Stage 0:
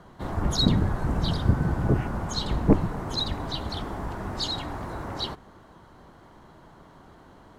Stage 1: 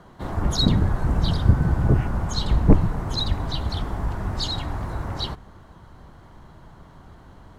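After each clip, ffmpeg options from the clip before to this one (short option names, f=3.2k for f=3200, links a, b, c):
-af "asubboost=boost=2.5:cutoff=170,volume=1.5dB"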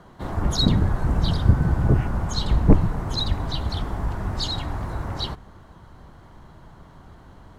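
-af anull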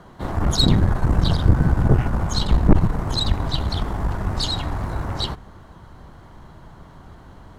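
-af "aeval=exprs='(tanh(5.01*val(0)+0.65)-tanh(0.65))/5.01':c=same,volume=6.5dB"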